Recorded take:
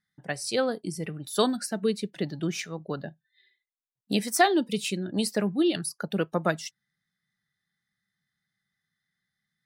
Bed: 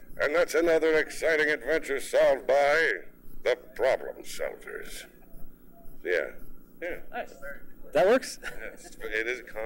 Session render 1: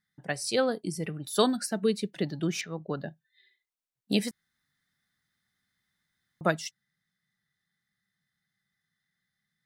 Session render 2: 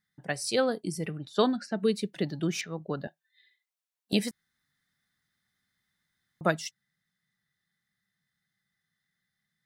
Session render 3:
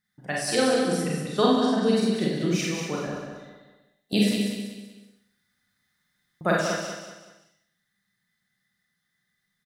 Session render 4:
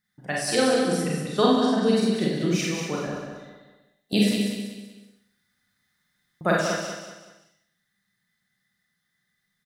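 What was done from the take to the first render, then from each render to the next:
2.61–3.01 air absorption 170 m; 4.31–6.41 room tone
1.18–1.8 air absorption 150 m; 3.07–4.13 HPF 600 Hz
feedback echo 0.19 s, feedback 37%, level -6 dB; Schroeder reverb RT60 0.69 s, combs from 31 ms, DRR -3.5 dB
gain +1 dB

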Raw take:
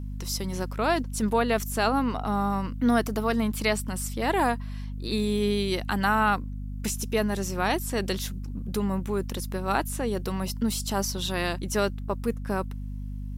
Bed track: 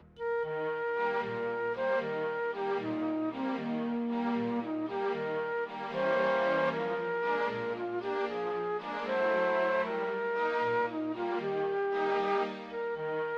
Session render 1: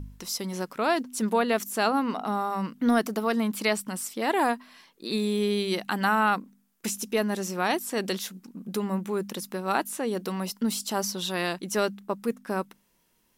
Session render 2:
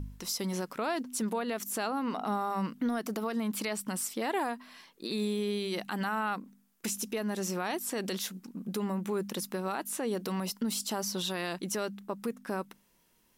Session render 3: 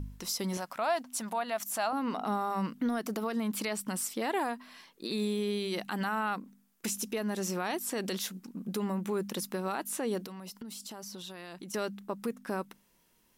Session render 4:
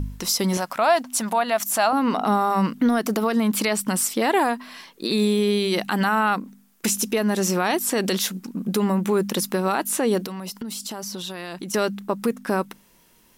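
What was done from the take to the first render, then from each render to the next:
de-hum 50 Hz, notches 5
compressor, threshold -26 dBFS, peak gain reduction 8 dB; limiter -23.5 dBFS, peak gain reduction 7.5 dB
0.57–1.93 resonant low shelf 540 Hz -6.5 dB, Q 3; 10.24–11.74 compressor 8:1, threshold -40 dBFS
gain +11.5 dB

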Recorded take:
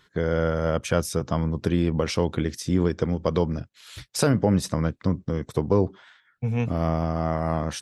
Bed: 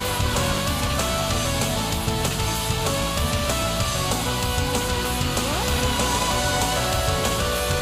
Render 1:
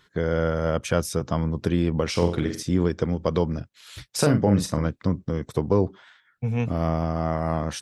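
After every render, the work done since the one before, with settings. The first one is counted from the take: 2.1–2.63 flutter echo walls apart 7.9 m, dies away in 0.42 s; 4.09–4.86 doubler 40 ms -7.5 dB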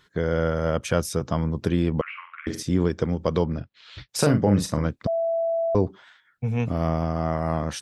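2.01–2.47 Chebyshev band-pass 1100–2700 Hz, order 4; 3.44–4.09 LPF 4600 Hz 24 dB/oct; 5.07–5.75 bleep 664 Hz -21 dBFS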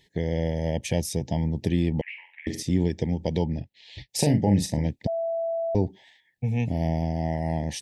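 elliptic band-stop 890–1800 Hz, stop band 40 dB; dynamic EQ 480 Hz, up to -5 dB, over -35 dBFS, Q 1.5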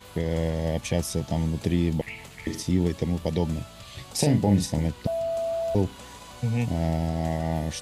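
add bed -22 dB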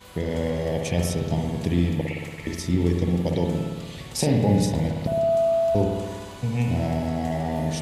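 spring tank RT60 1.5 s, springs 57 ms, chirp 75 ms, DRR 1 dB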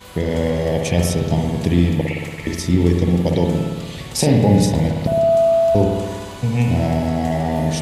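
gain +6.5 dB; limiter -3 dBFS, peak gain reduction 1 dB

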